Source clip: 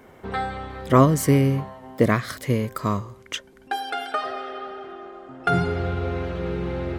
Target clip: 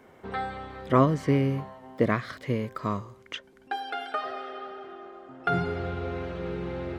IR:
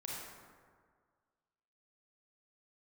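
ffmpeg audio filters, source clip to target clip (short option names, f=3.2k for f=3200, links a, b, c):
-filter_complex "[0:a]highshelf=f=10k:g=-6,acrossover=split=4600[a][b];[b]acompressor=threshold=-56dB:ratio=4:attack=1:release=60[c];[a][c]amix=inputs=2:normalize=0,lowshelf=f=85:g=-7.5,volume=-4.5dB"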